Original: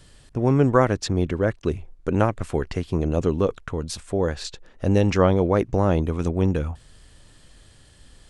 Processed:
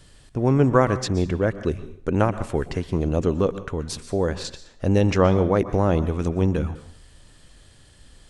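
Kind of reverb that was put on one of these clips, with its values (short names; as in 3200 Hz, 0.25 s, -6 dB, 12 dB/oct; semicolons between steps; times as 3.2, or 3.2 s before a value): plate-style reverb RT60 0.53 s, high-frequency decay 0.9×, pre-delay 0.11 s, DRR 13 dB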